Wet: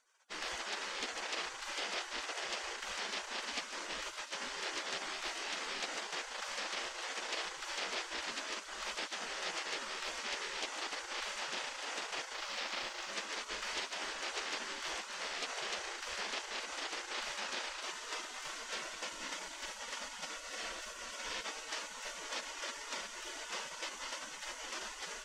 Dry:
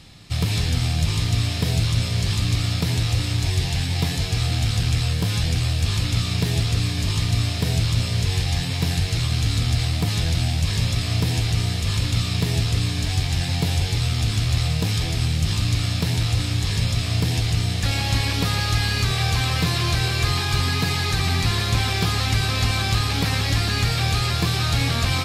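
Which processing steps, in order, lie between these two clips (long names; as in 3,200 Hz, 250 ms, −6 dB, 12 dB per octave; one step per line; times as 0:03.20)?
0:12.34–0:13.13: running median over 5 samples
gate on every frequency bin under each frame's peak −30 dB weak
high-frequency loss of the air 140 metres
delay with a high-pass on its return 1,181 ms, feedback 71%, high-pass 2,800 Hz, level −10.5 dB
level +1 dB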